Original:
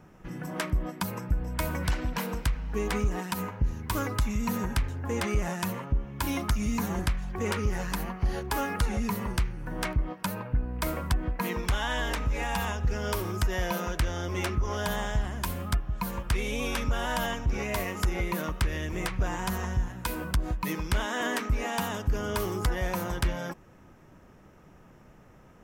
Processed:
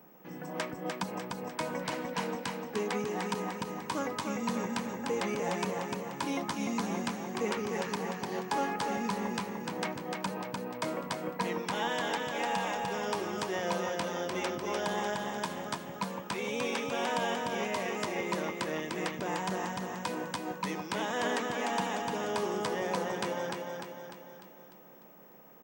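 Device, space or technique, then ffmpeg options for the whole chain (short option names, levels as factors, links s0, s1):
old television with a line whistle: -af "highpass=f=180:w=0.5412,highpass=f=180:w=1.3066,equalizer=f=500:t=q:w=4:g=5,equalizer=f=820:t=q:w=4:g=5,equalizer=f=1400:t=q:w=4:g=-3,lowpass=f=8400:w=0.5412,lowpass=f=8400:w=1.3066,aeval=exprs='val(0)+0.00178*sin(2*PI*15734*n/s)':c=same,aecho=1:1:299|598|897|1196|1495|1794|2093:0.631|0.322|0.164|0.0837|0.0427|0.0218|0.0111,volume=0.668"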